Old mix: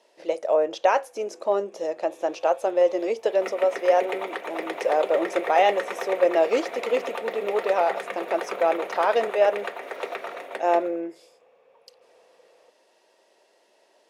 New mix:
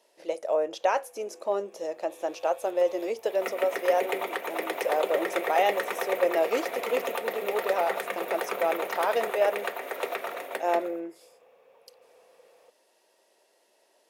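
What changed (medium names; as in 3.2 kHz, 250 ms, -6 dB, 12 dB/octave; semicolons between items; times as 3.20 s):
speech -5.0 dB; master: remove distance through air 55 m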